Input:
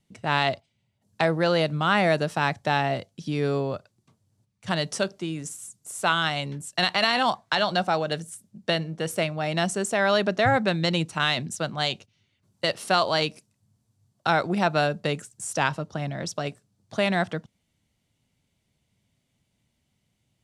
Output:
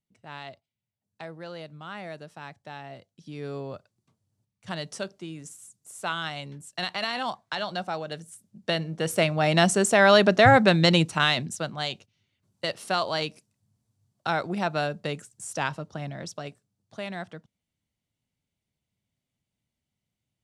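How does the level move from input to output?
0:02.80 −17.5 dB
0:03.73 −7.5 dB
0:08.18 −7.5 dB
0:09.42 +5 dB
0:10.93 +5 dB
0:11.83 −4.5 dB
0:16.10 −4.5 dB
0:16.96 −11.5 dB

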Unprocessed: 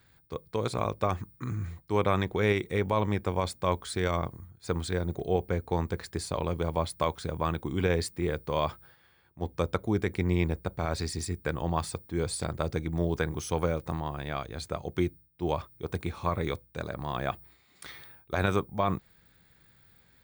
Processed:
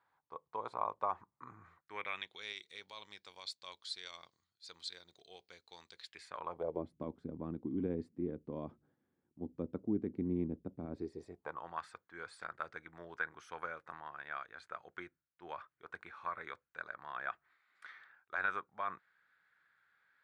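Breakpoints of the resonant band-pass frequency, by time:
resonant band-pass, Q 3.5
0:01.60 960 Hz
0:02.43 4,300 Hz
0:05.97 4,300 Hz
0:06.46 1,100 Hz
0:06.87 260 Hz
0:10.92 260 Hz
0:11.70 1,500 Hz

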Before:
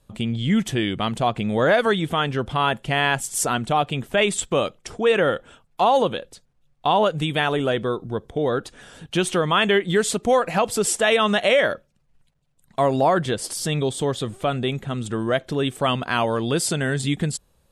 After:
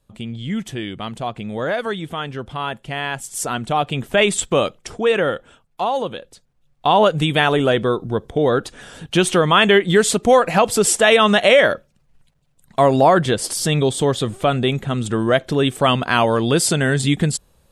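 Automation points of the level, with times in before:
0:03.10 −4.5 dB
0:04.10 +4 dB
0:04.66 +4 dB
0:06.02 −4 dB
0:07.07 +5.5 dB

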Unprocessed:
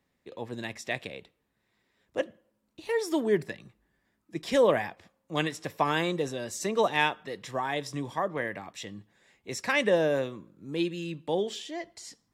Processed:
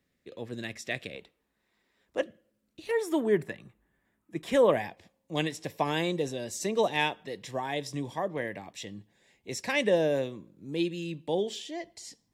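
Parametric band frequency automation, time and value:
parametric band −10.5 dB 0.64 octaves
910 Hz
from 0:01.15 120 Hz
from 0:02.23 920 Hz
from 0:02.91 4,900 Hz
from 0:04.72 1,300 Hz

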